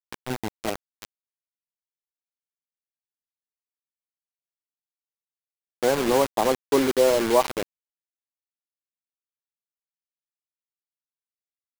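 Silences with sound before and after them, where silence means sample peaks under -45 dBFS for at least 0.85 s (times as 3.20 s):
1.05–5.83 s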